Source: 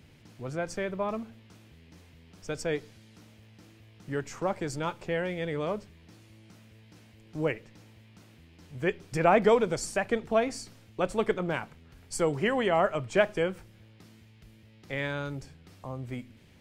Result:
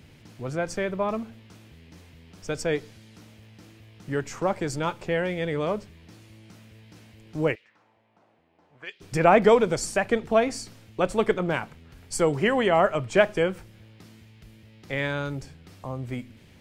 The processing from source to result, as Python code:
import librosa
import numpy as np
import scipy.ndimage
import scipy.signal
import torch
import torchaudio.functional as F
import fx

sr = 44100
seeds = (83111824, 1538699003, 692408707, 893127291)

y = fx.auto_wah(x, sr, base_hz=680.0, top_hz=4000.0, q=2.0, full_db=-26.5, direction='up', at=(7.54, 9.0), fade=0.02)
y = y * librosa.db_to_amplitude(4.5)